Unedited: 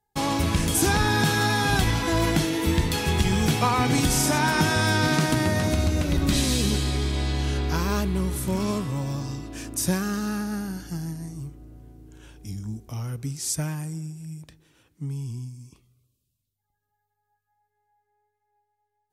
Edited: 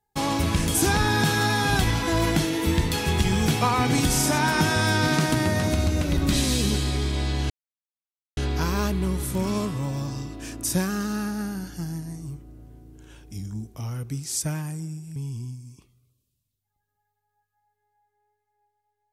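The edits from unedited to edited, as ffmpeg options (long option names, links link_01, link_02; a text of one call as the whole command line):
ffmpeg -i in.wav -filter_complex "[0:a]asplit=3[link_01][link_02][link_03];[link_01]atrim=end=7.5,asetpts=PTS-STARTPTS,afade=type=out:start_time=7.496:duration=0.004:curve=hsin,apad=pad_dur=0.87[link_04];[link_02]atrim=start=7.5:end=14.292,asetpts=PTS-STARTPTS,afade=type=in:duration=0.004:curve=hsin[link_05];[link_03]atrim=start=15.098[link_06];[link_04][link_05]concat=n=2:v=0:a=1[link_07];[link_07][link_06]acrossfade=duration=0.004:curve1=hsin:curve2=hsin" out.wav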